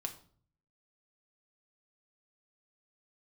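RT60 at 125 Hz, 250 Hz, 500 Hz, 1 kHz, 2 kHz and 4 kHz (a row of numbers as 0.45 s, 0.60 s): 0.90 s, 0.65 s, 0.55 s, 0.45 s, 0.35 s, 0.40 s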